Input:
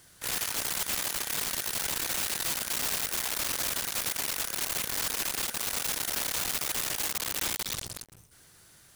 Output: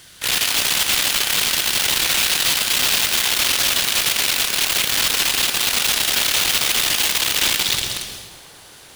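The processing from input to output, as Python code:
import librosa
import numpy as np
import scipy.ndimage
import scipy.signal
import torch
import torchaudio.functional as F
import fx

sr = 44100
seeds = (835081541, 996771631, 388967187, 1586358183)

y = fx.peak_eq(x, sr, hz=3200.0, db=9.5, octaves=1.4)
y = fx.echo_wet_bandpass(y, sr, ms=723, feedback_pct=78, hz=530.0, wet_db=-20)
y = fx.rev_plate(y, sr, seeds[0], rt60_s=1.2, hf_ratio=0.95, predelay_ms=120, drr_db=6.0)
y = y * librosa.db_to_amplitude(8.5)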